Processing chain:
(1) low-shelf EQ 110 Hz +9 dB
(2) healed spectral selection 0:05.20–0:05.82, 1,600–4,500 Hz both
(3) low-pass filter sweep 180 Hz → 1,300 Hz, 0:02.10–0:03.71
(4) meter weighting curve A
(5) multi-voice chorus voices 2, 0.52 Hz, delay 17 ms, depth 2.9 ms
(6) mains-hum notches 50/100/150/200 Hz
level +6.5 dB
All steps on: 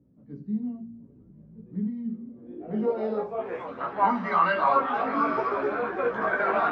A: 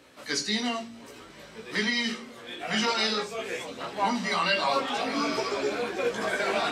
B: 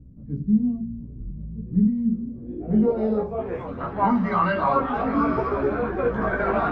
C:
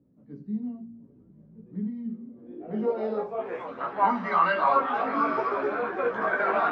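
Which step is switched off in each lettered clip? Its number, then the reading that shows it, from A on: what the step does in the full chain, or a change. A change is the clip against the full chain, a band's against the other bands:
3, change in integrated loudness −1.0 LU
4, 125 Hz band +11.0 dB
1, 125 Hz band −2.0 dB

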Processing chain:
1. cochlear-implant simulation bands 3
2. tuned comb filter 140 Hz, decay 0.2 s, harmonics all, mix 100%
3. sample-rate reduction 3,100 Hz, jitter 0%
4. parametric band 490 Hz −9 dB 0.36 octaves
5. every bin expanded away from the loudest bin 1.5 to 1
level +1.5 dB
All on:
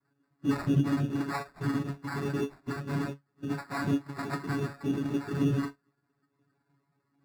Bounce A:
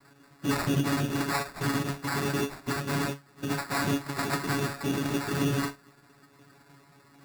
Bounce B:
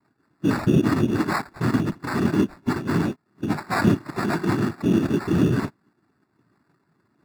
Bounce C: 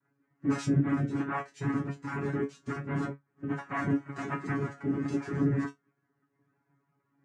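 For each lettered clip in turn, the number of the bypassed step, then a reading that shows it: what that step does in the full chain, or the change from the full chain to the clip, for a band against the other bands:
5, 8 kHz band +9.0 dB
2, 125 Hz band −2.0 dB
3, distortion level −1 dB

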